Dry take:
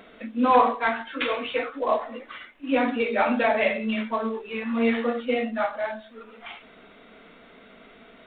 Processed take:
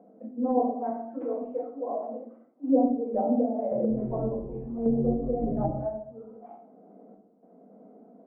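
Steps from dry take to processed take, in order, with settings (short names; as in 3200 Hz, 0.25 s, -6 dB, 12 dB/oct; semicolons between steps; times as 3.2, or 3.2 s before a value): Chebyshev band-pass 180–750 Hz, order 3; 3.53–5.73 frequency-shifting echo 0.179 s, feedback 61%, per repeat -91 Hz, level -8 dB; random-step tremolo 3.5 Hz, depth 80%; notches 60/120/180/240 Hz; shoebox room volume 550 m³, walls furnished, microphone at 2 m; treble ducked by the level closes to 570 Hz, closed at -21 dBFS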